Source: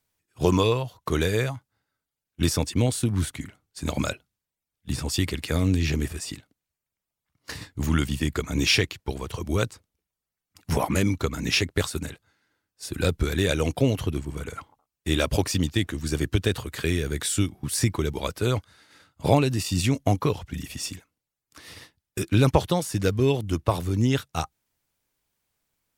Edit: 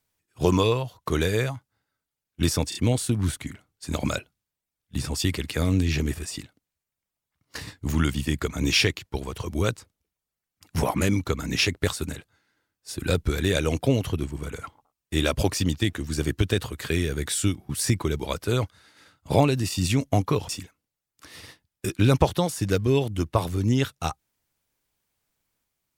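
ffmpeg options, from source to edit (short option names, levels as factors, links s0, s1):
-filter_complex "[0:a]asplit=4[s0][s1][s2][s3];[s0]atrim=end=2.722[s4];[s1]atrim=start=2.688:end=2.722[s5];[s2]atrim=start=2.688:end=20.432[s6];[s3]atrim=start=20.818[s7];[s4][s5]acrossfade=d=0.004:c1=hsin:c2=hsin[s8];[s8][s6]acrossfade=d=0.004:c1=hsin:c2=hsin[s9];[s9][s7]acrossfade=d=0.004:c1=hsin:c2=hsin"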